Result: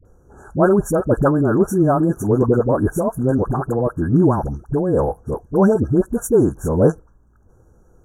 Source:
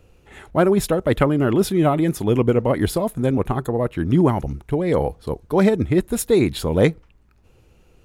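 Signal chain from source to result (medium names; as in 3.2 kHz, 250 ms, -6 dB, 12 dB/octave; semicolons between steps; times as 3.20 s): brick-wall FIR band-stop 1.7–5.6 kHz; treble shelf 8.2 kHz -7 dB; phase dispersion highs, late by 52 ms, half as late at 570 Hz; trim +2 dB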